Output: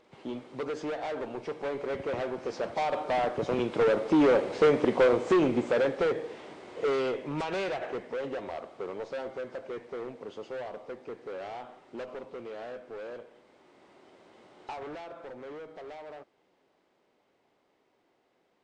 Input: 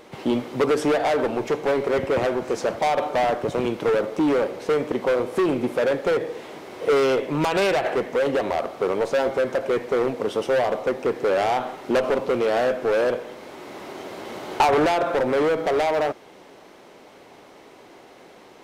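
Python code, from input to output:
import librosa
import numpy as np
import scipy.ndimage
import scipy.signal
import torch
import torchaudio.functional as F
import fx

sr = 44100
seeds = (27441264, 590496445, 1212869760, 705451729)

y = fx.freq_compress(x, sr, knee_hz=3700.0, ratio=1.5)
y = fx.doppler_pass(y, sr, speed_mps=6, closest_m=4.9, pass_at_s=4.71)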